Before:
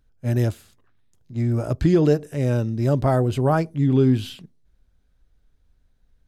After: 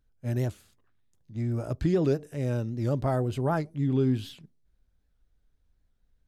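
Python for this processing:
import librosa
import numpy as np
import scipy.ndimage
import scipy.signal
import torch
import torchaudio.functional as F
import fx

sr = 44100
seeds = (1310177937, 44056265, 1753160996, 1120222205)

y = fx.record_warp(x, sr, rpm=78.0, depth_cents=160.0)
y = F.gain(torch.from_numpy(y), -7.5).numpy()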